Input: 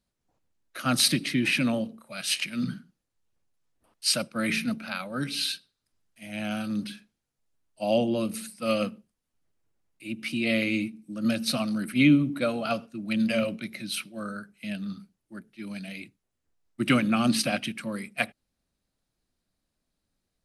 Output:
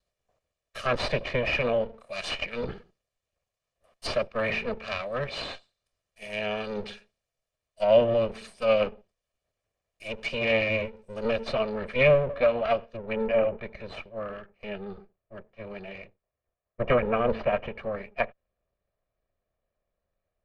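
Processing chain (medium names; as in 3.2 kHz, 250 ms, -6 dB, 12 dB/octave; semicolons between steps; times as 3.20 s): comb filter that takes the minimum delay 1.7 ms; low-pass 8.9 kHz 12 dB/octave, from 11.53 s 4.7 kHz, from 12.97 s 1.8 kHz; low-pass that closes with the level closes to 2.5 kHz, closed at -28 dBFS; fifteen-band graphic EQ 160 Hz -4 dB, 630 Hz +7 dB, 2.5 kHz +4 dB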